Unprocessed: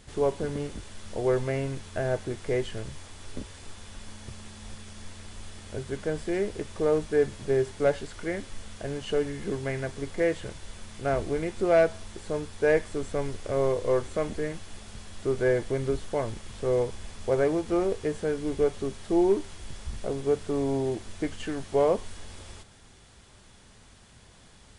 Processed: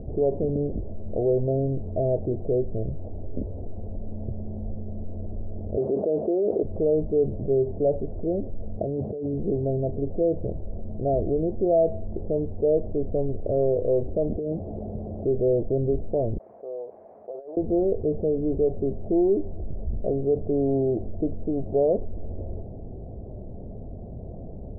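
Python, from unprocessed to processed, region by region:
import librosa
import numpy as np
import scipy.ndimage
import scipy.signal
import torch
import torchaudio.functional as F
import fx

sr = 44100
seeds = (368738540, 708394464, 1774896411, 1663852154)

y = fx.chain(x, sr, fx.highpass(hz=370.0, slope=12),
    fx.high_shelf(hz=3200.0, db=10.0),
    fx.env_flatten(amount_pct=100), at=(5.77, 6.63))
y = fx.chain(y, sr, fx.highpass(hz=85.0, slope=12),
    fx.over_compress(threshold_db=-38.0, ratio=-1.0), at=(8.8, 9.34))
y = fx.chain(y, sr, fx.highpass(hz=140.0, slope=6),
    fx.over_compress(threshold_db=-36.0, ratio=-1.0), at=(14.36, 15.25))
y = fx.chain(y, sr, fx.highpass_res(hz=2200.0, q=2.2),
    fx.over_compress(threshold_db=-42.0, ratio=-0.5), at=(16.38, 17.57))
y = scipy.signal.sosfilt(scipy.signal.cheby1(5, 1.0, 680.0, 'lowpass', fs=sr, output='sos'), y)
y = fx.env_flatten(y, sr, amount_pct=50)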